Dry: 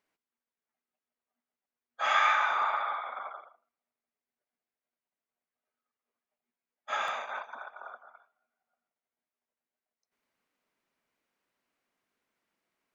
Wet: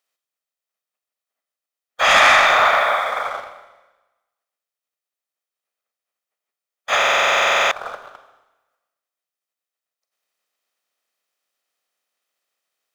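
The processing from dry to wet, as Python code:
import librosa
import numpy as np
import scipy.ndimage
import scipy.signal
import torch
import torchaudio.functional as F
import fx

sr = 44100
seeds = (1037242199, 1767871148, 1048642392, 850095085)

y = fx.spec_clip(x, sr, under_db=16)
y = scipy.signal.sosfilt(scipy.signal.butter(2, 330.0, 'highpass', fs=sr, output='sos'), y)
y = y + 0.36 * np.pad(y, (int(1.6 * sr / 1000.0), 0))[:len(y)]
y = fx.leveller(y, sr, passes=2)
y = fx.rev_schroeder(y, sr, rt60_s=1.1, comb_ms=31, drr_db=7.0)
y = fx.buffer_glitch(y, sr, at_s=(6.97,), block=2048, repeats=15)
y = F.gain(torch.from_numpy(y), 7.0).numpy()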